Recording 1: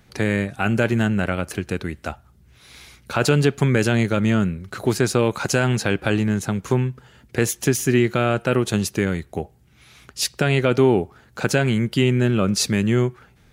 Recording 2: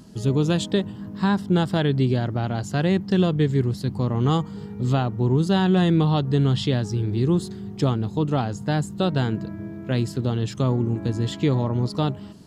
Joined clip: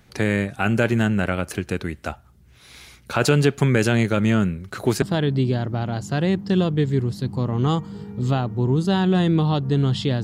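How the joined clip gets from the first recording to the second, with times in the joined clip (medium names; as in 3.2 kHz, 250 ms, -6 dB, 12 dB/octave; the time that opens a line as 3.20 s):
recording 1
5.02 s: go over to recording 2 from 1.64 s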